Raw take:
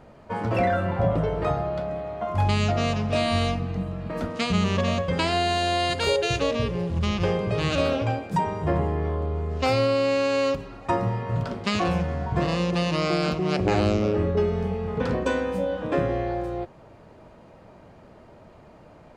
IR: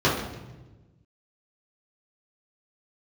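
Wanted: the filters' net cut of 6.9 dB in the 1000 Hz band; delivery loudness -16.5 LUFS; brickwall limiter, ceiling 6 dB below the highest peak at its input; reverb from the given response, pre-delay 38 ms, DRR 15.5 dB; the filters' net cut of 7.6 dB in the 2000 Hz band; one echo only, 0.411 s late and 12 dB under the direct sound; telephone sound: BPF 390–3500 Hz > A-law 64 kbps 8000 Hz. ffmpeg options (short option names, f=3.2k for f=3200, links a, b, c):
-filter_complex "[0:a]equalizer=f=1k:t=o:g=-8.5,equalizer=f=2k:t=o:g=-7,alimiter=limit=-17dB:level=0:latency=1,aecho=1:1:411:0.251,asplit=2[a][b];[1:a]atrim=start_sample=2205,adelay=38[c];[b][c]afir=irnorm=-1:irlink=0,volume=-33.5dB[d];[a][d]amix=inputs=2:normalize=0,highpass=390,lowpass=3.5k,volume=15dB" -ar 8000 -c:a pcm_alaw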